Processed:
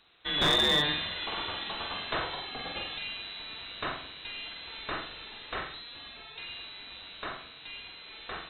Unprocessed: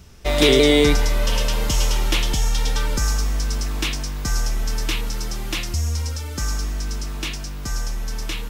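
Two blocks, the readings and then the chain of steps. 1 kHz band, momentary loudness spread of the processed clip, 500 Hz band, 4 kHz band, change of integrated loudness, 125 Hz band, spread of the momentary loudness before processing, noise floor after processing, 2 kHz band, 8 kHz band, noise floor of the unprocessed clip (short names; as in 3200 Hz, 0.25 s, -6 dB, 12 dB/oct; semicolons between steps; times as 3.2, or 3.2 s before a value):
-5.0 dB, 19 LU, -16.5 dB, -4.5 dB, -9.5 dB, -21.0 dB, 13 LU, -49 dBFS, -7.0 dB, under -20 dB, -30 dBFS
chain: HPF 710 Hz 6 dB/oct; wow and flutter 18 cents; inverted band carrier 4000 Hz; flutter echo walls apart 7.9 m, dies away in 0.48 s; overloaded stage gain 11.5 dB; gain -7 dB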